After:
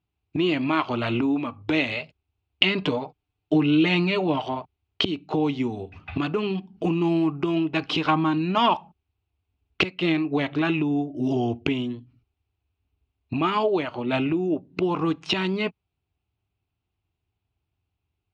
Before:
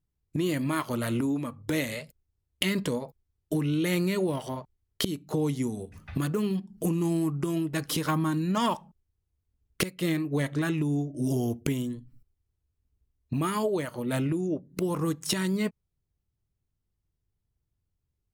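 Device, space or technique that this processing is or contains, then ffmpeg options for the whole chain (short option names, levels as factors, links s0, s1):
guitar cabinet: -filter_complex "[0:a]asettb=1/sr,asplit=3[s0][s1][s2];[s0]atrim=end=2.814[s3];[s1]atrim=start=2.81:end=4.42,asetpts=PTS-STARTPTS,afade=t=in:d=0.004:c=qsin,afade=t=out:st=1.606:d=0.004:c=qsin,aecho=1:1:6.7:0.6,atrim=end_sample=71001[s4];[s2]atrim=start=4.416[s5];[s3][s4]acrossfade=d=0.004:c1=hsin:c2=qsin[s6];[s6][s5]acrossfade=d=0.004:c1=qsin:c2=hsin,highpass=88,equalizer=f=140:t=q:w=4:g=-10,equalizer=f=210:t=q:w=4:g=-8,equalizer=f=520:t=q:w=4:g=-8,equalizer=f=760:t=q:w=4:g=6,equalizer=f=1800:t=q:w=4:g=-7,equalizer=f=2600:t=q:w=4:g=8,lowpass=f=3900:w=0.5412,lowpass=f=3900:w=1.3066,volume=2.24"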